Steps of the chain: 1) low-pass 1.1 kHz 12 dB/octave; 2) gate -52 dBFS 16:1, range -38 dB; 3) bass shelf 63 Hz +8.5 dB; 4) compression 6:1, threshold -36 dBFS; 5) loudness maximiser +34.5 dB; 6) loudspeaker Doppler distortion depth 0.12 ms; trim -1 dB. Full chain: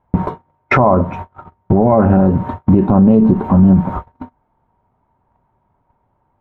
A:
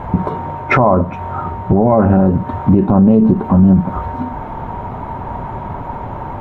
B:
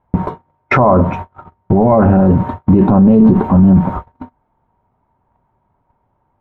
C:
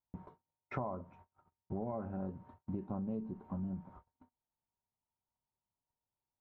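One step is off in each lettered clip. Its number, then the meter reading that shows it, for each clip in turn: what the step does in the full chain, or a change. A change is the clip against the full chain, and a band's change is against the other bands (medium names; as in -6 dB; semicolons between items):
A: 2, momentary loudness spread change +2 LU; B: 4, mean gain reduction 9.0 dB; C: 5, crest factor change +8.0 dB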